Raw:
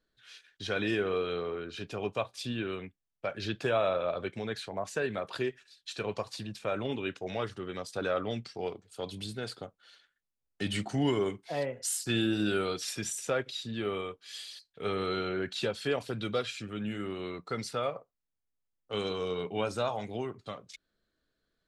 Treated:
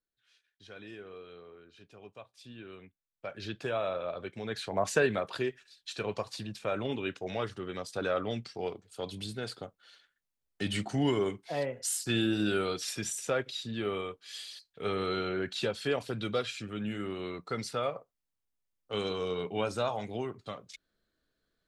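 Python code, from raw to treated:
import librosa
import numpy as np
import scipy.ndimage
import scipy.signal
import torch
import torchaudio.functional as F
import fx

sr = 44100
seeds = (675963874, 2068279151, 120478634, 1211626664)

y = fx.gain(x, sr, db=fx.line((2.25, -16.5), (3.4, -4.5), (4.33, -4.5), (4.9, 8.0), (5.35, 0.0)))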